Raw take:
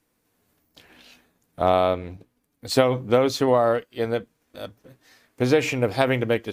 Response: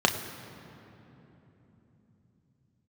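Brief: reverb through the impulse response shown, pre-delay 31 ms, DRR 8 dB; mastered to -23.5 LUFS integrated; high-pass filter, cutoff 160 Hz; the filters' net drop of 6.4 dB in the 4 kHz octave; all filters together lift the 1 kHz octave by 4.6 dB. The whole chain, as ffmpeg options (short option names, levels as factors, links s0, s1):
-filter_complex "[0:a]highpass=160,equalizer=f=1000:t=o:g=7,equalizer=f=4000:t=o:g=-8.5,asplit=2[s0][s1];[1:a]atrim=start_sample=2205,adelay=31[s2];[s1][s2]afir=irnorm=-1:irlink=0,volume=0.075[s3];[s0][s3]amix=inputs=2:normalize=0,volume=0.631"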